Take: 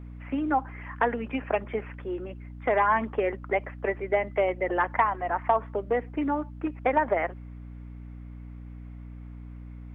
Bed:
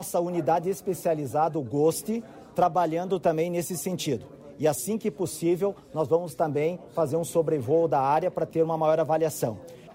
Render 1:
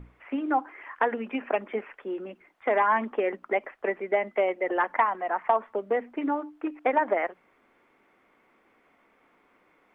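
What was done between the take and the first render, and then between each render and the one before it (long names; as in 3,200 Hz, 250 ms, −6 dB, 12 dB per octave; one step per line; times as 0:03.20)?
mains-hum notches 60/120/180/240/300 Hz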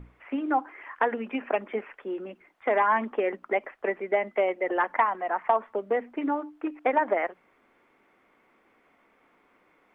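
no processing that can be heard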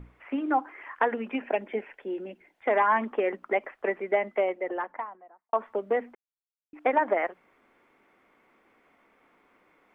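0:01.41–0:02.68: parametric band 1,200 Hz −14 dB 0.36 octaves
0:04.13–0:05.53: fade out and dull
0:06.15–0:06.73: silence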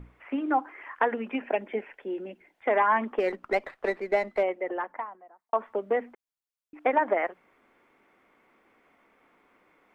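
0:03.18–0:04.43: windowed peak hold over 3 samples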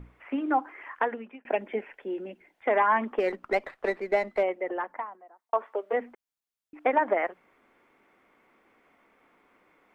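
0:00.91–0:01.45: fade out
0:05.02–0:05.92: high-pass filter 160 Hz → 440 Hz 24 dB per octave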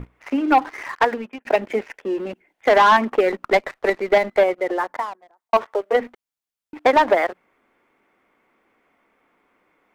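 in parallel at +1 dB: output level in coarse steps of 24 dB
on the sum: leveller curve on the samples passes 2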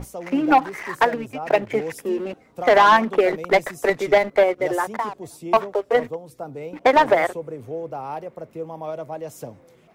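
mix in bed −8 dB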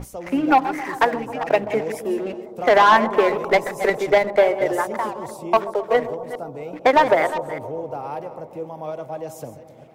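delay that plays each chunk backwards 205 ms, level −12 dB
bucket-brigade delay 132 ms, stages 1,024, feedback 78%, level −15.5 dB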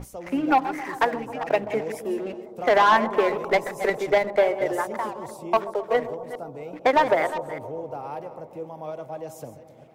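level −4 dB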